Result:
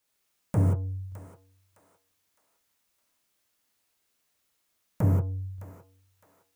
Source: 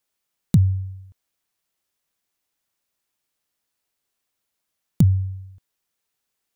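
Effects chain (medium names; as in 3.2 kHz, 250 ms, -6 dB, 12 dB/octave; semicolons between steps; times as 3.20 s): saturation -23 dBFS, distortion -6 dB; thinning echo 611 ms, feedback 41%, high-pass 830 Hz, level -12 dB; gated-style reverb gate 200 ms flat, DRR -2 dB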